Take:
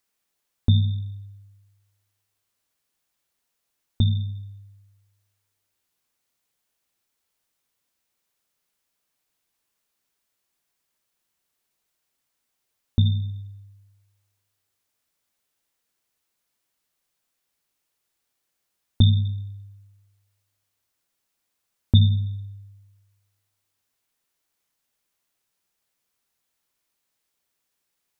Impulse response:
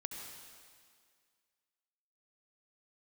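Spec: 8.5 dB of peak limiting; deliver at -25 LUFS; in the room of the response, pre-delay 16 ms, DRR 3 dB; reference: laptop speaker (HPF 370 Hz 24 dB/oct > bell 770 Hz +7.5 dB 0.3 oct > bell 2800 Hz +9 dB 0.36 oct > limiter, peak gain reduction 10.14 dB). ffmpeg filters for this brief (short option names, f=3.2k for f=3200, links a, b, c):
-filter_complex "[0:a]alimiter=limit=-12.5dB:level=0:latency=1,asplit=2[a][b];[1:a]atrim=start_sample=2205,adelay=16[c];[b][c]afir=irnorm=-1:irlink=0,volume=-2dB[d];[a][d]amix=inputs=2:normalize=0,highpass=f=370:w=0.5412,highpass=f=370:w=1.3066,equalizer=f=770:t=o:w=0.3:g=7.5,equalizer=f=2.8k:t=o:w=0.36:g=9,volume=18dB,alimiter=limit=-14dB:level=0:latency=1"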